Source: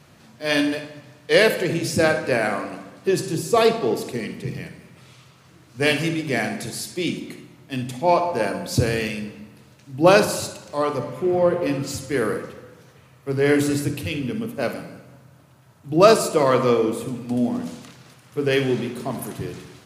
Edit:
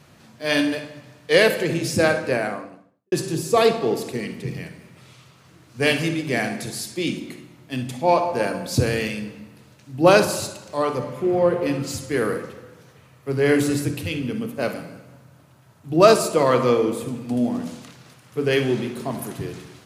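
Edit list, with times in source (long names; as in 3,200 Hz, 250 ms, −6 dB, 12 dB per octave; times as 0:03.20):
0:02.13–0:03.12: fade out and dull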